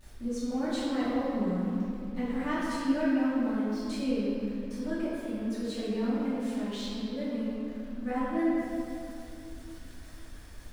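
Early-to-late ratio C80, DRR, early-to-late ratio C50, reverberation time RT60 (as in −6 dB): −1.5 dB, −13.0 dB, −3.5 dB, 2.7 s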